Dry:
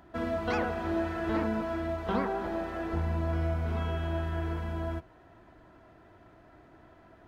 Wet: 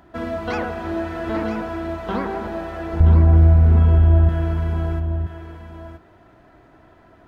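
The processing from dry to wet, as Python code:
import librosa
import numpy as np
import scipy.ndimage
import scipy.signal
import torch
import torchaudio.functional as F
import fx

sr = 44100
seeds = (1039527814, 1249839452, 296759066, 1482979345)

y = fx.tilt_eq(x, sr, slope=-4.0, at=(3.0, 4.29))
y = y + 10.0 ** (-8.5 / 20.0) * np.pad(y, (int(977 * sr / 1000.0), 0))[:len(y)]
y = F.gain(torch.from_numpy(y), 5.0).numpy()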